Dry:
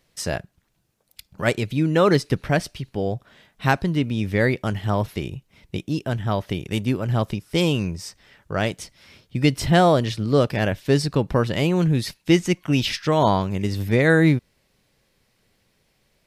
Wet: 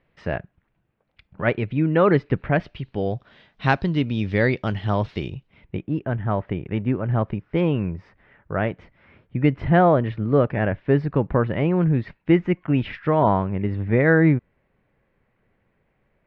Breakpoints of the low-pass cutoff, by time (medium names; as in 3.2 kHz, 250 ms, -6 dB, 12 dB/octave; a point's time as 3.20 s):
low-pass 24 dB/octave
2.52 s 2.5 kHz
3.15 s 4.4 kHz
5.31 s 4.4 kHz
5.82 s 2.1 kHz